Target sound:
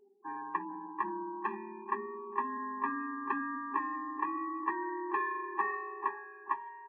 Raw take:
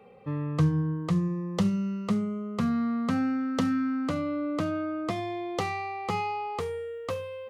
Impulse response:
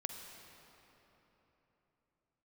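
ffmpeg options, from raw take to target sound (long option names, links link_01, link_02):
-filter_complex "[0:a]afftfilt=real='re*gte(hypot(re,im),0.00501)':imag='im*gte(hypot(re,im),0.00501)':win_size=1024:overlap=0.75,areverse,acompressor=mode=upward:threshold=-38dB:ratio=2.5,areverse,asoftclip=type=hard:threshold=-19dB,highpass=frequency=480:width_type=q:width=0.5412,highpass=frequency=480:width_type=q:width=1.307,lowpass=frequency=2300:width_type=q:width=0.5176,lowpass=frequency=2300:width_type=q:width=0.7071,lowpass=frequency=2300:width_type=q:width=1.932,afreqshift=57,asetrate=35002,aresample=44100,atempo=1.25992,asplit=2[link_01][link_02];[link_02]adelay=16,volume=-10dB[link_03];[link_01][link_03]amix=inputs=2:normalize=0,asplit=2[link_04][link_05];[link_05]adelay=476,lowpass=frequency=1000:poles=1,volume=-8dB,asplit=2[link_06][link_07];[link_07]adelay=476,lowpass=frequency=1000:poles=1,volume=0.34,asplit=2[link_08][link_09];[link_09]adelay=476,lowpass=frequency=1000:poles=1,volume=0.34,asplit=2[link_10][link_11];[link_11]adelay=476,lowpass=frequency=1000:poles=1,volume=0.34[link_12];[link_06][link_08][link_10][link_12]amix=inputs=4:normalize=0[link_13];[link_04][link_13]amix=inputs=2:normalize=0,asetrate=48000,aresample=44100,afftfilt=real='re*eq(mod(floor(b*sr/1024/390),2),0)':imag='im*eq(mod(floor(b*sr/1024/390),2),0)':win_size=1024:overlap=0.75,volume=6dB"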